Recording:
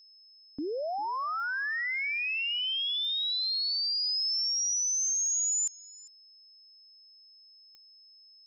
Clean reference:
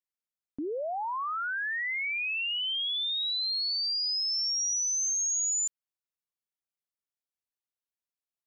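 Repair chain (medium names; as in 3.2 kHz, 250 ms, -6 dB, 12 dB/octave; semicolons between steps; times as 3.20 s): de-click; band-stop 5.2 kHz, Q 30; inverse comb 399 ms -22 dB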